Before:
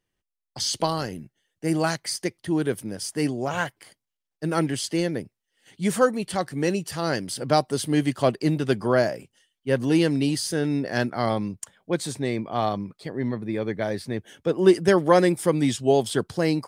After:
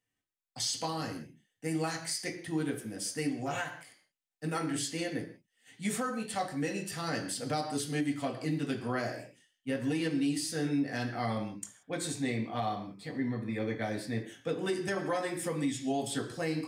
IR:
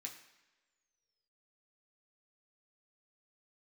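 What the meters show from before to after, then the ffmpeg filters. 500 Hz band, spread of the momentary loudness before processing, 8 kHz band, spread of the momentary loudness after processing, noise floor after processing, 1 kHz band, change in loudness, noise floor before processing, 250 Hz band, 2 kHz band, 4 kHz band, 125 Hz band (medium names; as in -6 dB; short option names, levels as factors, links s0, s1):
-13.0 dB, 10 LU, -5.0 dB, 8 LU, under -85 dBFS, -9.0 dB, -9.5 dB, -84 dBFS, -8.5 dB, -7.5 dB, -7.5 dB, -9.5 dB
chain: -filter_complex "[1:a]atrim=start_sample=2205,afade=t=out:st=0.24:d=0.01,atrim=end_sample=11025[s0];[0:a][s0]afir=irnorm=-1:irlink=0,alimiter=limit=0.075:level=0:latency=1:release=366"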